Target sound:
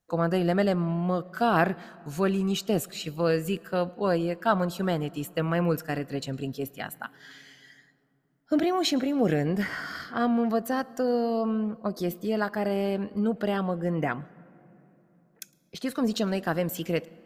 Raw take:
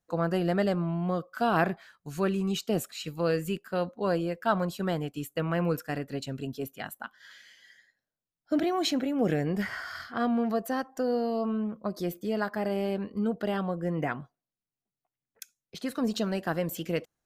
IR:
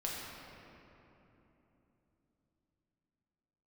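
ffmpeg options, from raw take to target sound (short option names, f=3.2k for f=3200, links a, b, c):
-filter_complex "[0:a]asplit=2[a][b];[1:a]atrim=start_sample=2205,adelay=108[c];[b][c]afir=irnorm=-1:irlink=0,volume=-25.5dB[d];[a][d]amix=inputs=2:normalize=0,volume=2.5dB"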